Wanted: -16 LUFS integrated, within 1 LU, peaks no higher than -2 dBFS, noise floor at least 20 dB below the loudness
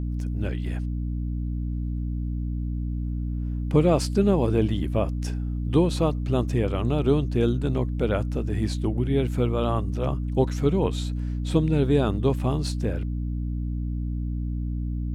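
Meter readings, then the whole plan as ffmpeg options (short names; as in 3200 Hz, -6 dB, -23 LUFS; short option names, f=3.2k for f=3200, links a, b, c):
hum 60 Hz; harmonics up to 300 Hz; hum level -25 dBFS; loudness -26.0 LUFS; peak -8.0 dBFS; loudness target -16.0 LUFS
-> -af "bandreject=f=60:t=h:w=6,bandreject=f=120:t=h:w=6,bandreject=f=180:t=h:w=6,bandreject=f=240:t=h:w=6,bandreject=f=300:t=h:w=6"
-af "volume=10dB,alimiter=limit=-2dB:level=0:latency=1"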